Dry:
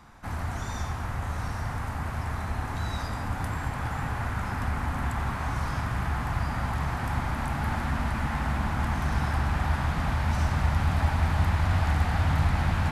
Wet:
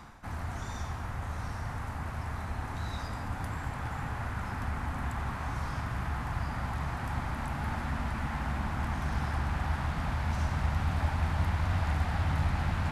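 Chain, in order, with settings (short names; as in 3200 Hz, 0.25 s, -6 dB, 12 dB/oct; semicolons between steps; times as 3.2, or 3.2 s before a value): reverse; upward compressor, threshold -29 dBFS; reverse; Doppler distortion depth 0.28 ms; gain -5 dB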